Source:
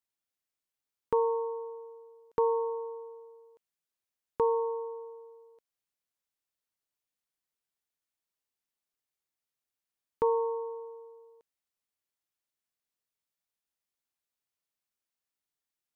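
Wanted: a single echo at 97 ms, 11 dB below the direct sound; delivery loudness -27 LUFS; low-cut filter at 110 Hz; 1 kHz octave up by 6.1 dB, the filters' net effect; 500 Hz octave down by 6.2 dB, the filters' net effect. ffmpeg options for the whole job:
-af "highpass=110,equalizer=f=500:t=o:g=-8,equalizer=f=1000:t=o:g=8.5,aecho=1:1:97:0.282,volume=1.5"

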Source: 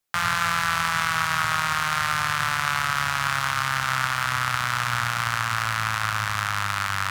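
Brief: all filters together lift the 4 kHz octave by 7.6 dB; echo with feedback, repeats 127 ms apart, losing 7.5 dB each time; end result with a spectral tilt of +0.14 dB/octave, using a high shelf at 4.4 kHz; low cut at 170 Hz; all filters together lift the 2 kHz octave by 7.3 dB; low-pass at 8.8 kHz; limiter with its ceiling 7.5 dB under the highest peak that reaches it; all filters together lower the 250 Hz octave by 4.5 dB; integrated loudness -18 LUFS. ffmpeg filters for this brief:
-af "highpass=170,lowpass=8800,equalizer=f=250:t=o:g=-3,equalizer=f=2000:t=o:g=8,equalizer=f=4000:t=o:g=5.5,highshelf=f=4400:g=3,alimiter=limit=0.355:level=0:latency=1,aecho=1:1:127|254|381|508|635:0.422|0.177|0.0744|0.0312|0.0131,volume=1.41"

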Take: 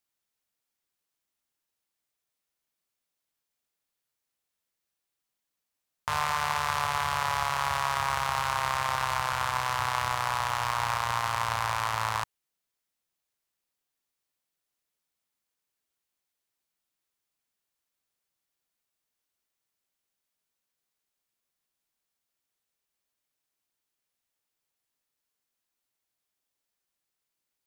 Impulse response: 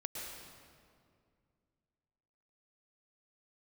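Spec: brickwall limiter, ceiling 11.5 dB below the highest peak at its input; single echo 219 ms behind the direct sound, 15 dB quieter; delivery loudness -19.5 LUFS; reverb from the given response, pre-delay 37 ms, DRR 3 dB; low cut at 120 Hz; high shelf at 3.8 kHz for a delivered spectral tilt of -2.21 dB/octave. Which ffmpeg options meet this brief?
-filter_complex "[0:a]highpass=120,highshelf=f=3800:g=5.5,alimiter=limit=0.106:level=0:latency=1,aecho=1:1:219:0.178,asplit=2[s0][s1];[1:a]atrim=start_sample=2205,adelay=37[s2];[s1][s2]afir=irnorm=-1:irlink=0,volume=0.708[s3];[s0][s3]amix=inputs=2:normalize=0,volume=5.31"

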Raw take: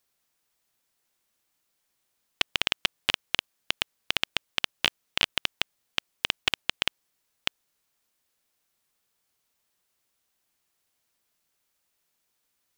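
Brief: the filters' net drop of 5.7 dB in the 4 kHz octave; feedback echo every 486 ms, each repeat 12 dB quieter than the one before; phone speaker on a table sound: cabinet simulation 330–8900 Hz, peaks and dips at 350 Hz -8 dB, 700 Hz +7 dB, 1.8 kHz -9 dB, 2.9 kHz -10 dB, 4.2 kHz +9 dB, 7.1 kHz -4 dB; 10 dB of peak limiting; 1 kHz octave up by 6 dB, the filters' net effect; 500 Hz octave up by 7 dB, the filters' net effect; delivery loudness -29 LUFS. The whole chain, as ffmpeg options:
-af "equalizer=f=500:t=o:g=5.5,equalizer=f=1000:t=o:g=4.5,equalizer=f=4000:t=o:g=-4.5,alimiter=limit=0.224:level=0:latency=1,highpass=f=330:w=0.5412,highpass=f=330:w=1.3066,equalizer=f=350:t=q:w=4:g=-8,equalizer=f=700:t=q:w=4:g=7,equalizer=f=1800:t=q:w=4:g=-9,equalizer=f=2900:t=q:w=4:g=-10,equalizer=f=4200:t=q:w=4:g=9,equalizer=f=7100:t=q:w=4:g=-4,lowpass=f=8900:w=0.5412,lowpass=f=8900:w=1.3066,aecho=1:1:486|972|1458:0.251|0.0628|0.0157,volume=4.73"

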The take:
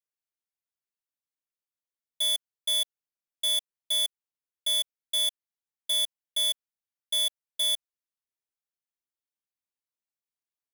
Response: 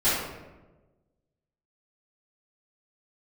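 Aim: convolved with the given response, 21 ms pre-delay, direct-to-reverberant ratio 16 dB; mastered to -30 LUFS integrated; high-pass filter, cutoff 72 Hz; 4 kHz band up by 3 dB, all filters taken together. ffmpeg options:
-filter_complex "[0:a]highpass=72,equalizer=f=4000:t=o:g=3.5,asplit=2[s0][s1];[1:a]atrim=start_sample=2205,adelay=21[s2];[s1][s2]afir=irnorm=-1:irlink=0,volume=0.0282[s3];[s0][s3]amix=inputs=2:normalize=0,volume=0.562"

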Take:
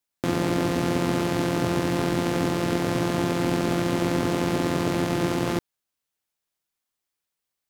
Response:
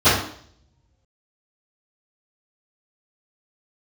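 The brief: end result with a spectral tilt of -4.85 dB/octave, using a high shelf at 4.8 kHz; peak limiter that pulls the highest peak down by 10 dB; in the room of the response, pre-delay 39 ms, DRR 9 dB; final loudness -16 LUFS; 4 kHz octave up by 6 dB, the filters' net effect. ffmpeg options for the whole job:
-filter_complex "[0:a]equalizer=f=4000:t=o:g=4,highshelf=f=4800:g=7.5,alimiter=limit=0.15:level=0:latency=1,asplit=2[s0][s1];[1:a]atrim=start_sample=2205,adelay=39[s2];[s1][s2]afir=irnorm=-1:irlink=0,volume=0.0224[s3];[s0][s3]amix=inputs=2:normalize=0,volume=4.73"

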